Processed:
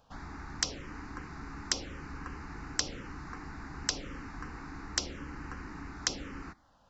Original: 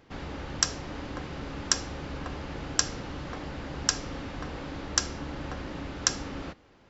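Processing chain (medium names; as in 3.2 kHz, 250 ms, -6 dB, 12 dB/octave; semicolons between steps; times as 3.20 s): peaking EQ 110 Hz -6.5 dB 1.7 oct; touch-sensitive phaser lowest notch 340 Hz, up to 1.7 kHz, full sweep at -25 dBFS; trim -1.5 dB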